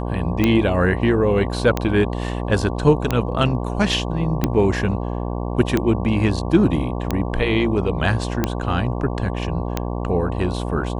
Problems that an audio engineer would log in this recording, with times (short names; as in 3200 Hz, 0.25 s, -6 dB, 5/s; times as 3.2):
buzz 60 Hz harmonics 19 -25 dBFS
tick 45 rpm -5 dBFS